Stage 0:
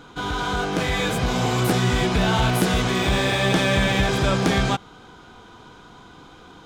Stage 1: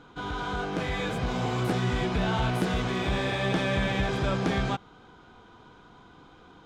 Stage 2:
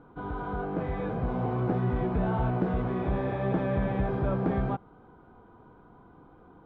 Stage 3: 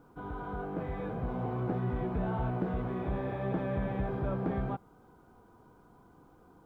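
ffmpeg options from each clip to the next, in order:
-af "aemphasis=mode=reproduction:type=50kf,volume=-6.5dB"
-af "lowpass=1k"
-af "acrusher=bits=11:mix=0:aa=0.000001,volume=-5dB"

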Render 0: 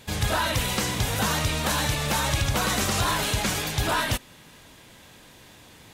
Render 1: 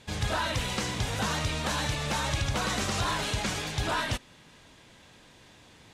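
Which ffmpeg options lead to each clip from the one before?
-af "lowpass=7.8k,volume=-4.5dB"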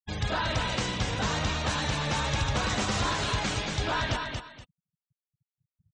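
-filter_complex "[0:a]afftfilt=real='re*gte(hypot(re,im),0.0141)':imag='im*gte(hypot(re,im),0.0141)':win_size=1024:overlap=0.75,asplit=2[a][b];[b]aecho=0:1:232|475:0.596|0.141[c];[a][c]amix=inputs=2:normalize=0"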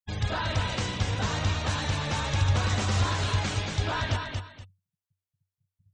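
-af "equalizer=f=95:t=o:w=0.24:g=13.5,volume=-1.5dB"

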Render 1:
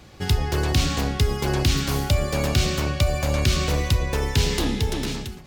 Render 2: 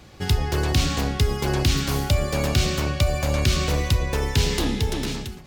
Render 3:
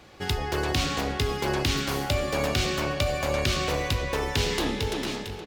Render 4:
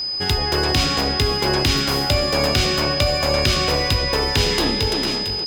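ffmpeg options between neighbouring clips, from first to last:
-af anull
-filter_complex "[0:a]bass=f=250:g=-9,treble=f=4k:g=-5,asplit=2[a][b];[b]adelay=471,lowpass=f=4.4k:p=1,volume=-11dB,asplit=2[c][d];[d]adelay=471,lowpass=f=4.4k:p=1,volume=0.55,asplit=2[e][f];[f]adelay=471,lowpass=f=4.4k:p=1,volume=0.55,asplit=2[g][h];[h]adelay=471,lowpass=f=4.4k:p=1,volume=0.55,asplit=2[i][j];[j]adelay=471,lowpass=f=4.4k:p=1,volume=0.55,asplit=2[k][l];[l]adelay=471,lowpass=f=4.4k:p=1,volume=0.55[m];[a][c][e][g][i][k][m]amix=inputs=7:normalize=0"
-af "aeval=exprs='val(0)+0.0355*sin(2*PI*5000*n/s)':c=same,volume=6.5dB"

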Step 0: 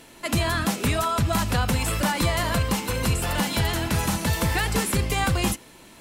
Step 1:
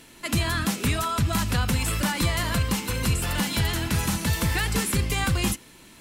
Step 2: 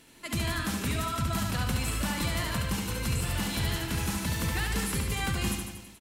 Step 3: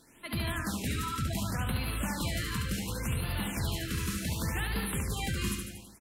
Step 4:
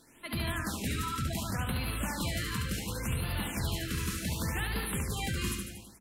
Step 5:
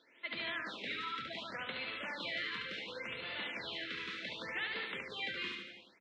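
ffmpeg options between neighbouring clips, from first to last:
-af "equalizer=f=660:t=o:w=1.4:g=-6.5"
-af "aecho=1:1:70|147|231.7|324.9|427.4:0.631|0.398|0.251|0.158|0.1,volume=-7.5dB"
-af "afftfilt=real='re*(1-between(b*sr/1024,670*pow(7000/670,0.5+0.5*sin(2*PI*0.68*pts/sr))/1.41,670*pow(7000/670,0.5+0.5*sin(2*PI*0.68*pts/sr))*1.41))':imag='im*(1-between(b*sr/1024,670*pow(7000/670,0.5+0.5*sin(2*PI*0.68*pts/sr))/1.41,670*pow(7000/670,0.5+0.5*sin(2*PI*0.68*pts/sr))*1.41))':win_size=1024:overlap=0.75,volume=-2.5dB"
-af "bandreject=f=50:t=h:w=6,bandreject=f=100:t=h:w=6,bandreject=f=150:t=h:w=6,bandreject=f=200:t=h:w=6"
-af "highpass=450,equalizer=f=530:t=q:w=4:g=4,equalizer=f=800:t=q:w=4:g=-6,equalizer=f=1.1k:t=q:w=4:g=-4,equalizer=f=2.1k:t=q:w=4:g=7,equalizer=f=3.6k:t=q:w=4:g=7,lowpass=f=3.8k:w=0.5412,lowpass=f=3.8k:w=1.3066,volume=-3.5dB"

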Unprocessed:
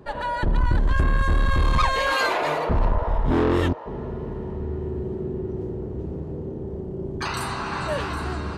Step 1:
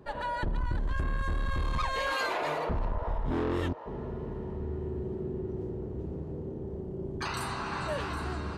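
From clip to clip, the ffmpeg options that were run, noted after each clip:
-af "acompressor=threshold=-21dB:ratio=4,volume=-6dB"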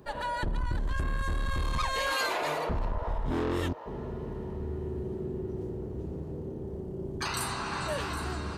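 -af "highshelf=f=5k:g=11"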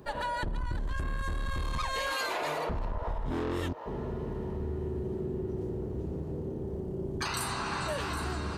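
-af "acompressor=threshold=-31dB:ratio=6,volume=2dB"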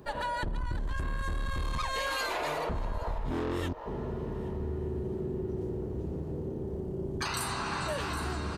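-af "aecho=1:1:818:0.0794"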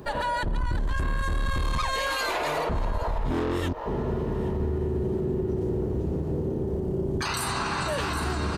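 -af "alimiter=level_in=3.5dB:limit=-24dB:level=0:latency=1:release=39,volume=-3.5dB,volume=8dB"

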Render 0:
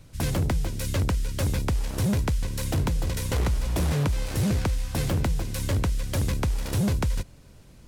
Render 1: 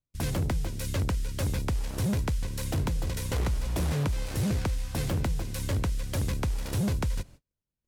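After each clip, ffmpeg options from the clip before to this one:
-af "agate=range=-37dB:threshold=-43dB:ratio=16:detection=peak,volume=-3.5dB"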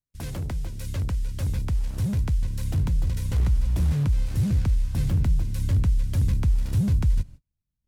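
-af "asubboost=boost=5:cutoff=210,volume=-5dB"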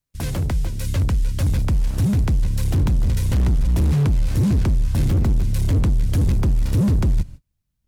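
-af "asoftclip=type=hard:threshold=-22.5dB,volume=8dB"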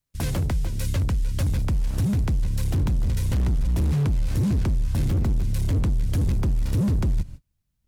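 -af "acompressor=threshold=-20dB:ratio=6"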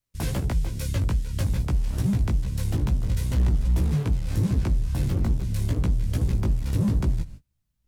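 -af "flanger=delay=15.5:depth=3.3:speed=2.4,volume=2dB"

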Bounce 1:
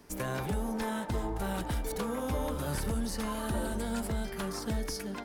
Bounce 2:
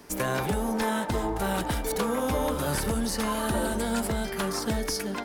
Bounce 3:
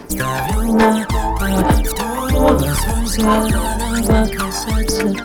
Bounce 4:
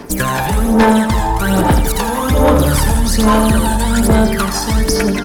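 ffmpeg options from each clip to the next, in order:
-af "lowshelf=f=160:g=-7.5,volume=8dB"
-af "aphaser=in_gain=1:out_gain=1:delay=1.2:decay=0.69:speed=1.2:type=sinusoidal,volume=7dB"
-filter_complex "[0:a]asoftclip=type=tanh:threshold=-6dB,asplit=2[a][b];[b]aecho=0:1:82|164|246|328|410|492:0.335|0.181|0.0977|0.0527|0.0285|0.0154[c];[a][c]amix=inputs=2:normalize=0,volume=3dB"

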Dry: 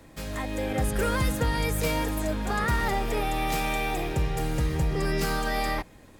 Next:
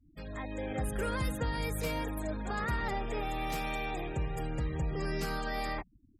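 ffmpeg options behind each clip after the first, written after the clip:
-af "afftfilt=real='re*gte(hypot(re,im),0.0141)':imag='im*gte(hypot(re,im),0.0141)':win_size=1024:overlap=0.75,volume=-7.5dB"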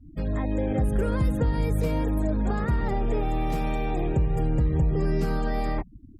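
-af "acompressor=threshold=-37dB:ratio=3,tiltshelf=f=810:g=8,volume=9dB"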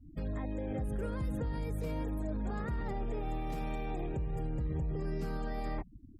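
-af "alimiter=limit=-22.5dB:level=0:latency=1:release=61,volume=-6dB"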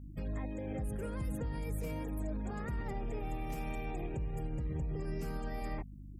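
-filter_complex "[0:a]acrossover=split=430[a][b];[b]aexciter=amount=1.3:drive=5.4:freq=2.1k[c];[a][c]amix=inputs=2:normalize=0,aeval=exprs='val(0)+0.00631*(sin(2*PI*50*n/s)+sin(2*PI*2*50*n/s)/2+sin(2*PI*3*50*n/s)/3+sin(2*PI*4*50*n/s)/4+sin(2*PI*5*50*n/s)/5)':c=same,volume=-2.5dB"

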